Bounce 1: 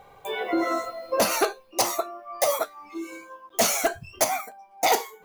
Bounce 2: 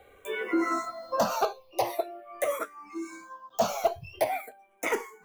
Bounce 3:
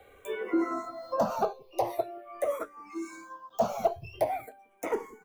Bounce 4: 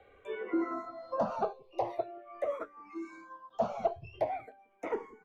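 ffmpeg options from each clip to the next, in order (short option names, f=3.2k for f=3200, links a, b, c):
-filter_complex "[0:a]acrossover=split=250|490|2400[a][b][c][d];[d]acompressor=threshold=-36dB:ratio=6[e];[a][b][c][e]amix=inputs=4:normalize=0,asplit=2[f][g];[g]afreqshift=-0.44[h];[f][h]amix=inputs=2:normalize=1"
-filter_complex "[0:a]acrossover=split=270|1100[a][b][c];[a]aecho=1:1:34.99|177.8:0.282|0.447[d];[c]acompressor=threshold=-45dB:ratio=6[e];[d][b][e]amix=inputs=3:normalize=0"
-af "lowpass=3.4k,volume=-4dB"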